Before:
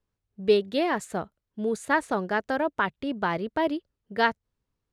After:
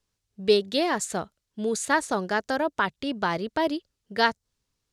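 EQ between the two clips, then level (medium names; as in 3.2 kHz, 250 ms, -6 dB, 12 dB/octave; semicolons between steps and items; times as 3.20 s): dynamic bell 2.6 kHz, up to -6 dB, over -40 dBFS, Q 1; peaking EQ 6 kHz +13 dB 2.4 oct; 0.0 dB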